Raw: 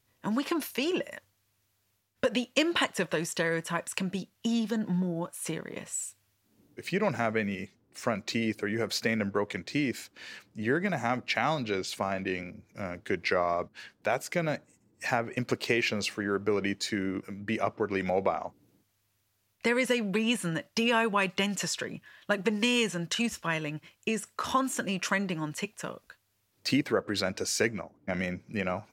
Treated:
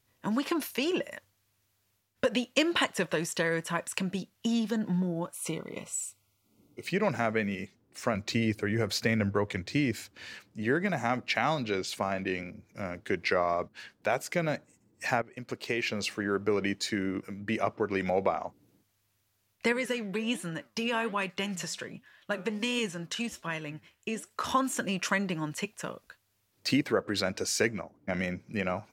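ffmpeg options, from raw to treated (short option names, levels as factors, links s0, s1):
-filter_complex "[0:a]asettb=1/sr,asplit=3[s0][s1][s2];[s0]atrim=end=5.344[s3];[s1]atrim=start=5.34:end=6.86,asetpts=PTS-STARTPTS,afade=t=in:d=0.004:c=qsin,afade=t=out:st=1.516:d=0.004:c=qsin,asuperstop=centerf=1700:order=20:qfactor=3.4[s4];[s2]atrim=start=6.856[s5];[s3][s4]acrossfade=d=0.004:c1=hsin:c2=qsin[s6];[s6][s5]acrossfade=d=0.004:c1=qsin:c2=hsin,asettb=1/sr,asplit=3[s7][s8][s9];[s7]atrim=end=8.144[s10];[s8]atrim=start=8.14:end=10.34,asetpts=PTS-STARTPTS,afade=t=in:d=0.004:c=qsin,afade=t=out:st=2.196:d=0.004:c=qsin,equalizer=f=92:w=1.3:g=10[s11];[s9]atrim=start=10.336[s12];[s10][s11]acrossfade=d=0.004:c1=hsin:c2=qsin[s13];[s13][s12]acrossfade=d=0.004:c1=qsin:c2=hsin,asettb=1/sr,asplit=3[s14][s15][s16];[s14]atrim=end=19.724[s17];[s15]atrim=start=19.72:end=24.31,asetpts=PTS-STARTPTS,afade=t=in:d=0.004:c=qsin,afade=t=out:st=4.586:d=0.004:c=qsin,flanger=delay=3.5:depth=9.9:regen=85:speed=1.3:shape=triangular[s18];[s16]atrim=start=24.306[s19];[s17][s18]acrossfade=d=0.004:c1=hsin:c2=qsin[s20];[s20][s19]acrossfade=d=0.004:c1=qsin:c2=hsin,asplit=2[s21][s22];[s21]atrim=end=15.22,asetpts=PTS-STARTPTS,afade=t=out:st=15.216:d=0.004:c=hsin:silence=0.158489[s23];[s22]atrim=start=15.22,asetpts=PTS-STARTPTS,afade=t=in:d=0.97:silence=0.158489[s24];[s23][s24]concat=n=2:v=0:a=1"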